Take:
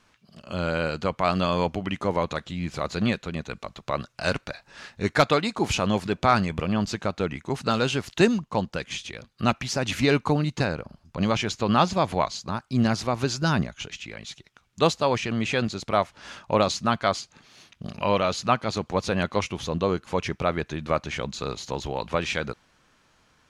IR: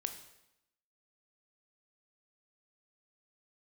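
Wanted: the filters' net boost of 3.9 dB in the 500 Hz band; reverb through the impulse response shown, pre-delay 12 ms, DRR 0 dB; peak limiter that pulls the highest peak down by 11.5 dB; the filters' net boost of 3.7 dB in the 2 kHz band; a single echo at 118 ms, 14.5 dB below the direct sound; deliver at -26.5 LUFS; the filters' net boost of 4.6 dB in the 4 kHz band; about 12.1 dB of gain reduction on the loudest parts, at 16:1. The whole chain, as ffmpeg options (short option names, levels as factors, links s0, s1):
-filter_complex "[0:a]equalizer=f=500:t=o:g=4.5,equalizer=f=2000:t=o:g=3.5,equalizer=f=4000:t=o:g=4.5,acompressor=threshold=0.0708:ratio=16,alimiter=limit=0.0944:level=0:latency=1,aecho=1:1:118:0.188,asplit=2[s0][s1];[1:a]atrim=start_sample=2205,adelay=12[s2];[s1][s2]afir=irnorm=-1:irlink=0,volume=1[s3];[s0][s3]amix=inputs=2:normalize=0,volume=1.5"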